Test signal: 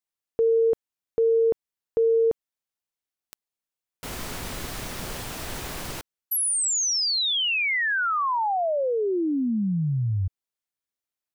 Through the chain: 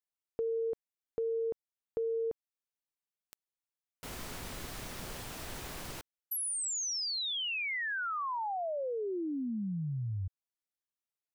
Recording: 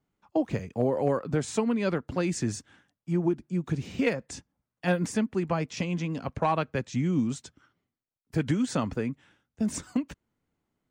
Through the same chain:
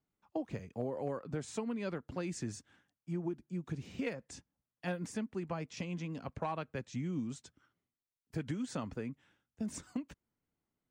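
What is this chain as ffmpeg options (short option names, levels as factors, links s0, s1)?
-af "acompressor=threshold=0.0562:ratio=2.5:attack=28:release=519:knee=6,volume=0.376"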